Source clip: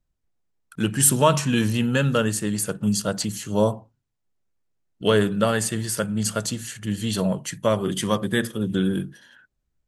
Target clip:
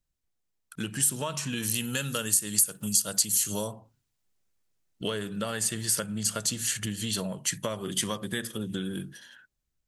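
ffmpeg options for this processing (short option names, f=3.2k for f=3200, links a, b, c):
-filter_complex "[0:a]dynaudnorm=f=160:g=11:m=11.5dB,asplit=3[a][b][c];[a]afade=t=out:st=1.62:d=0.02[d];[b]aemphasis=mode=production:type=75fm,afade=t=in:st=1.62:d=0.02,afade=t=out:st=3.66:d=0.02[e];[c]afade=t=in:st=3.66:d=0.02[f];[d][e][f]amix=inputs=3:normalize=0,acompressor=threshold=-23dB:ratio=8,highshelf=f=2.1k:g=9.5,volume=-7dB"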